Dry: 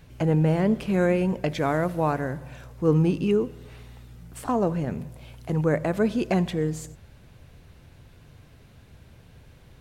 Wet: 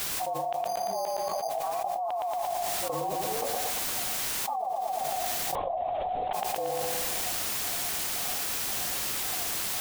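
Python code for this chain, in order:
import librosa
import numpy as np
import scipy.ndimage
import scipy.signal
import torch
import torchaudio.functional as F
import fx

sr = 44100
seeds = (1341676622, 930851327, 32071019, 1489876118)

p1 = fx.partial_stretch(x, sr, pct=112)
p2 = fx.env_lowpass(p1, sr, base_hz=470.0, full_db=-21.5)
p3 = fx.formant_cascade(p2, sr, vowel='a')
p4 = fx.filter_lfo_bandpass(p3, sr, shape='square', hz=1.9, low_hz=730.0, high_hz=3100.0, q=3.8)
p5 = fx.quant_dither(p4, sr, seeds[0], bits=12, dither='triangular')
p6 = p5 + fx.echo_feedback(p5, sr, ms=115, feedback_pct=46, wet_db=-8.0, dry=0)
p7 = fx.resample_bad(p6, sr, factor=8, down='filtered', up='hold', at=(0.67, 1.5))
p8 = fx.lpc_vocoder(p7, sr, seeds[1], excitation='whisper', order=16, at=(5.55, 6.33))
y = fx.env_flatten(p8, sr, amount_pct=100)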